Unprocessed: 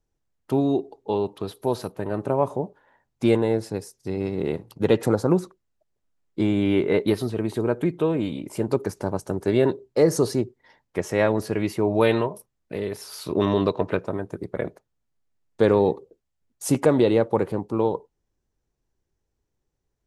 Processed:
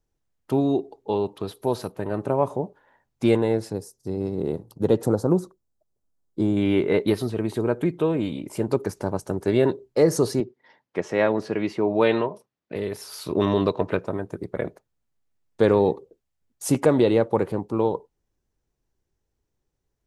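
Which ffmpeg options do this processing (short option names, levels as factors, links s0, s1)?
-filter_complex "[0:a]asettb=1/sr,asplit=3[s0][s1][s2];[s0]atrim=end=3.734[s3];[s1]atrim=start=3.73:end=6.57,asetpts=PTS-STARTPTS,afade=t=in:d=0.004:c=qsin,afade=t=out:st=2.836:d=0.004:c=qsin,equalizer=f=2300:w=1:g=-14[s4];[s2]atrim=start=6.566[s5];[s3][s4]acrossfade=d=0.004:c1=hsin:c2=qsin[s6];[s6][s5]acrossfade=d=0.004:c1=qsin:c2=hsin,asettb=1/sr,asplit=3[s7][s8][s9];[s7]atrim=end=10.404[s10];[s8]atrim=start=10.4:end=12.76,asetpts=PTS-STARTPTS,afade=t=in:d=0.004:c=qsin,afade=t=out:st=2.356:d=0.004:c=qsin,highpass=160,lowpass=4800[s11];[s9]atrim=start=12.756[s12];[s10][s11]acrossfade=d=0.004:c1=hsin:c2=qsin[s13];[s13][s12]acrossfade=d=0.004:c1=qsin:c2=hsin"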